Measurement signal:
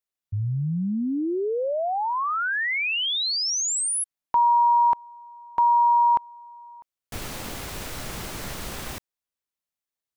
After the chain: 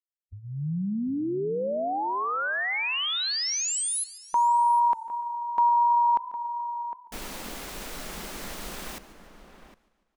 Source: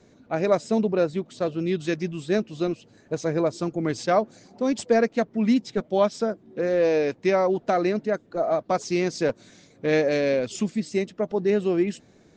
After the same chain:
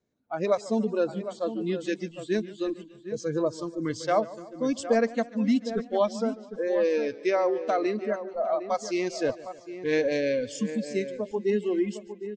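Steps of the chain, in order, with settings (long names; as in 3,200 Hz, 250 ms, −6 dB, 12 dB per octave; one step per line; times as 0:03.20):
noise reduction from a noise print of the clip's start 21 dB
slap from a distant wall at 130 metres, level −11 dB
feedback echo with a swinging delay time 146 ms, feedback 59%, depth 110 cents, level −19 dB
level −3 dB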